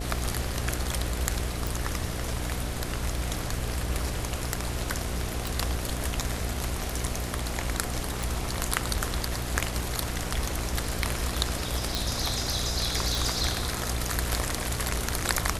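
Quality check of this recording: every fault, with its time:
buzz 60 Hz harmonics 12 -34 dBFS
1.67 s: pop
5.47 s: pop
8.23 s: pop
11.95 s: pop
13.15 s: pop

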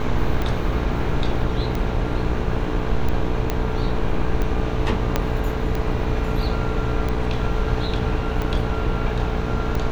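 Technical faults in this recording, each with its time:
buzz 60 Hz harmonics 20 -26 dBFS
tick 45 rpm -13 dBFS
3.50 s: pop -8 dBFS
5.16 s: pop -5 dBFS

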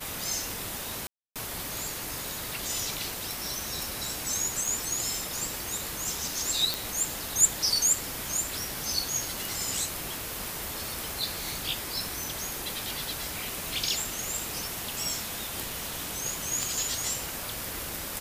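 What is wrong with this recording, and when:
1.07–1.36 s: dropout 287 ms
4.66 s: pop
6.74 s: pop
12.05 s: pop
16.63 s: pop

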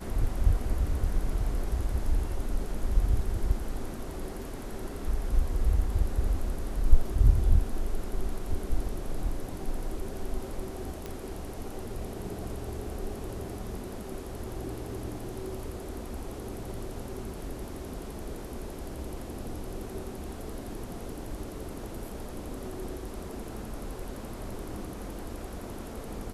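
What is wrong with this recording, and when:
11.06 s: pop -22 dBFS

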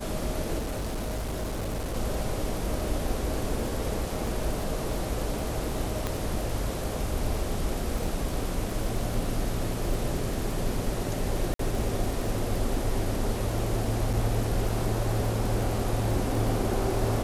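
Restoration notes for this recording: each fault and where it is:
crackle 24 per s -32 dBFS
0.58–1.96 s: clipped -27.5 dBFS
4.27 s: dropout 3.2 ms
6.07 s: pop -14 dBFS
11.54–11.59 s: dropout 53 ms
14.13–14.14 s: dropout 5.3 ms

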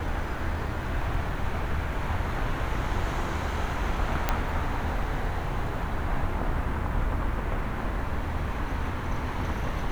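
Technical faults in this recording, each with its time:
4.29 s: pop -9 dBFS

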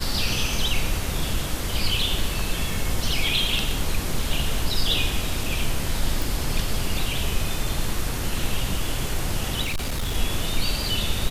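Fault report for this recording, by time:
6.22 s: pop
9.63–10.16 s: clipped -22 dBFS

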